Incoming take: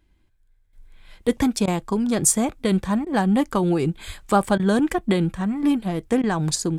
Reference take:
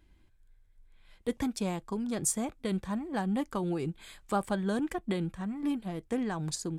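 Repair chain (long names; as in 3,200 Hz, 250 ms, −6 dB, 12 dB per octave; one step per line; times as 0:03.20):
0:04.06–0:04.18: high-pass filter 140 Hz 24 dB per octave
repair the gap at 0:01.66/0:03.05/0:04.58/0:06.22, 14 ms
0:00.73: level correction −11.5 dB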